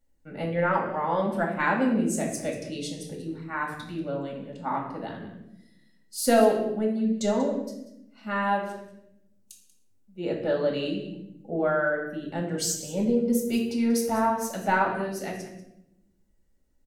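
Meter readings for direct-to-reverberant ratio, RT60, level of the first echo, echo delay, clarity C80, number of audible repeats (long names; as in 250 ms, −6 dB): −1.5 dB, 0.85 s, −14.0 dB, 188 ms, 8.0 dB, 1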